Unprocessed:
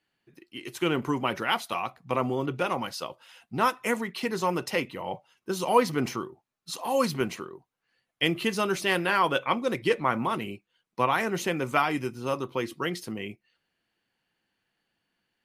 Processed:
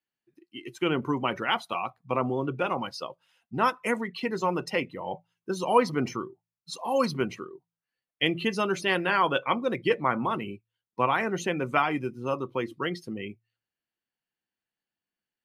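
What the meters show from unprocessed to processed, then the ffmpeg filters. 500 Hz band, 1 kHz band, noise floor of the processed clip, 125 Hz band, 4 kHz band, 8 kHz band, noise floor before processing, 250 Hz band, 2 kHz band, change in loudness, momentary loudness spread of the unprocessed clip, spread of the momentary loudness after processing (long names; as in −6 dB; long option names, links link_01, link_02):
0.0 dB, 0.0 dB, below −85 dBFS, −0.5 dB, −1.0 dB, −5.0 dB, −82 dBFS, 0.0 dB, −0.5 dB, 0.0 dB, 14 LU, 15 LU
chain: -af "bandreject=frequency=56.24:width_type=h:width=4,bandreject=frequency=112.48:width_type=h:width=4,bandreject=frequency=168.72:width_type=h:width=4,afftdn=noise_reduction=15:noise_floor=-38"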